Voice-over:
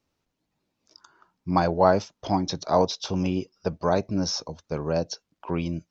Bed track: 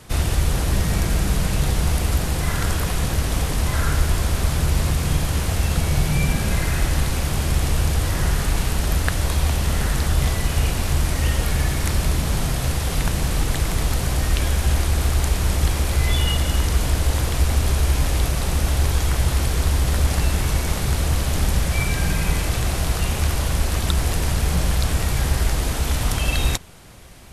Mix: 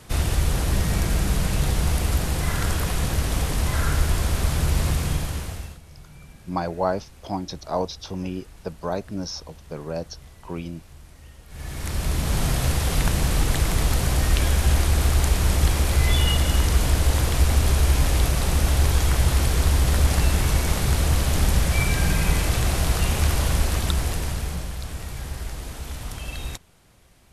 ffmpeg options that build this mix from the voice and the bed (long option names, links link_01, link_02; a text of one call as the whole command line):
ffmpeg -i stem1.wav -i stem2.wav -filter_complex "[0:a]adelay=5000,volume=-4.5dB[link_01];[1:a]volume=24dB,afade=type=out:start_time=4.94:duration=0.85:silence=0.0630957,afade=type=in:start_time=11.48:duration=1.01:silence=0.0501187,afade=type=out:start_time=23.5:duration=1.21:silence=0.251189[link_02];[link_01][link_02]amix=inputs=2:normalize=0" out.wav